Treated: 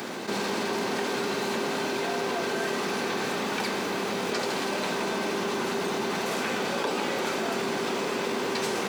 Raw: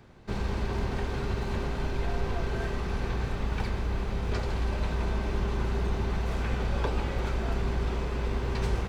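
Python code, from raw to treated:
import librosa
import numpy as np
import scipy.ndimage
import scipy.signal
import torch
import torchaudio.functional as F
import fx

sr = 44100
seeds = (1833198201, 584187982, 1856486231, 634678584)

y = scipy.signal.sosfilt(scipy.signal.butter(4, 220.0, 'highpass', fs=sr, output='sos'), x)
y = fx.high_shelf(y, sr, hz=4500.0, db=10.5)
y = fx.env_flatten(y, sr, amount_pct=70)
y = y * librosa.db_to_amplitude(1.5)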